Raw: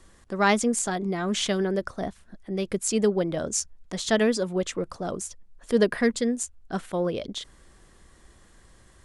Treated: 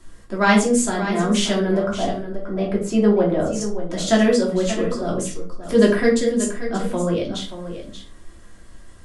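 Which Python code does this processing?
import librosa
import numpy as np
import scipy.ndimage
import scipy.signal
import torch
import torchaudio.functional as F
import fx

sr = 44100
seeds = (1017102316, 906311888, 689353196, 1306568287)

p1 = fx.curve_eq(x, sr, hz=(390.0, 760.0, 8100.0), db=(0, 5, -14), at=(1.77, 3.61))
p2 = p1 + fx.echo_single(p1, sr, ms=581, db=-11.0, dry=0)
y = fx.room_shoebox(p2, sr, seeds[0], volume_m3=260.0, walls='furnished', distance_m=2.9)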